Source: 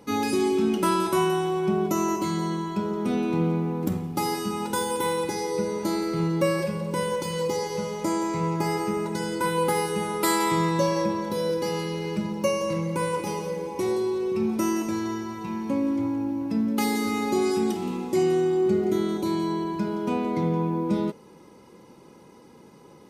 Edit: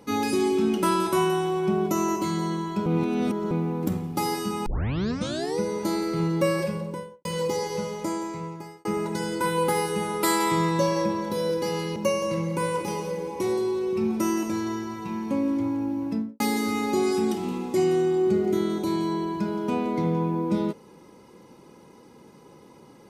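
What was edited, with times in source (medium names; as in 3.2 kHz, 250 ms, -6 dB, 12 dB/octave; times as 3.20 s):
2.86–3.51 s: reverse
4.66 s: tape start 0.93 s
6.67–7.25 s: studio fade out
7.78–8.85 s: fade out
11.96–12.35 s: delete
16.46–16.79 s: studio fade out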